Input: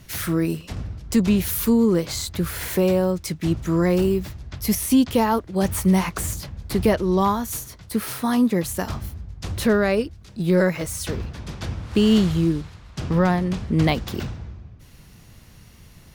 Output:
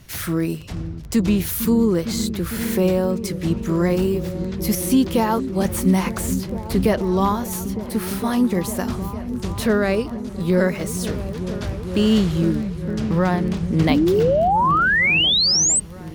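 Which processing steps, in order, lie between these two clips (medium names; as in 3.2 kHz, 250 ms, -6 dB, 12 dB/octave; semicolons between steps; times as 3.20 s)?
delay with an opening low-pass 455 ms, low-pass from 200 Hz, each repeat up 1 oct, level -6 dB; painted sound rise, 13.89–15.80 s, 250–8500 Hz -17 dBFS; crackle 13 per s -29 dBFS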